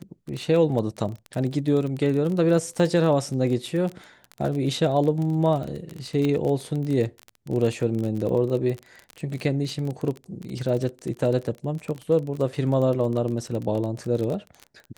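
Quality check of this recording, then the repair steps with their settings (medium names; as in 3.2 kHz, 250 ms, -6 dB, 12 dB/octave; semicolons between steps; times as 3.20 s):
crackle 27 per s -28 dBFS
6.25 s: pop -16 dBFS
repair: de-click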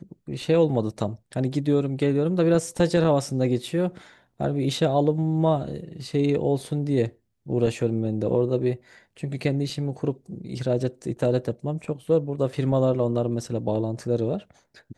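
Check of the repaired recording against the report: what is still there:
6.25 s: pop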